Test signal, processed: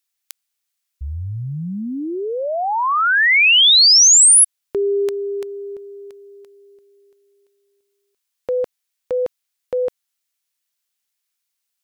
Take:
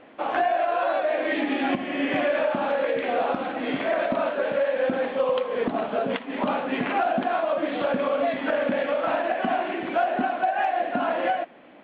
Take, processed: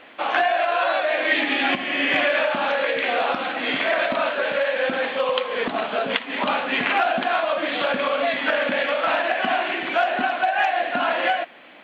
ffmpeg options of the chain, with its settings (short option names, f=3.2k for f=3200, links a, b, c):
-af "tiltshelf=f=1.1k:g=-8.5,volume=5dB"